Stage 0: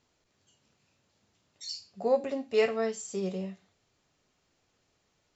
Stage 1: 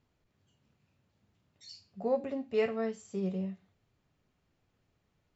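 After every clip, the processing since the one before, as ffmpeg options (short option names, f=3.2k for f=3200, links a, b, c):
-af "bass=f=250:g=9,treble=f=4k:g=-10,volume=-5dB"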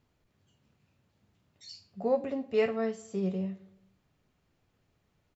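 -filter_complex "[0:a]asplit=2[a][b];[b]adelay=109,lowpass=f=2k:p=1,volume=-20dB,asplit=2[c][d];[d]adelay=109,lowpass=f=2k:p=1,volume=0.52,asplit=2[e][f];[f]adelay=109,lowpass=f=2k:p=1,volume=0.52,asplit=2[g][h];[h]adelay=109,lowpass=f=2k:p=1,volume=0.52[i];[a][c][e][g][i]amix=inputs=5:normalize=0,volume=2.5dB"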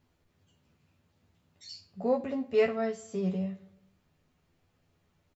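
-filter_complex "[0:a]asplit=2[a][b];[b]adelay=12,volume=-4dB[c];[a][c]amix=inputs=2:normalize=0"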